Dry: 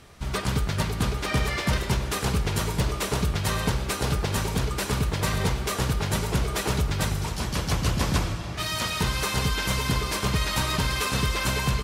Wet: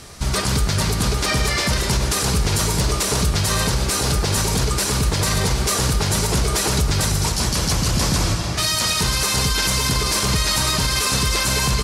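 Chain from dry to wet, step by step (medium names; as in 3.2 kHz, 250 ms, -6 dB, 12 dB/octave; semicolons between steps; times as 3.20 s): high-order bell 7 kHz +8 dB; peak limiter -19 dBFS, peak gain reduction 10 dB; trim +9 dB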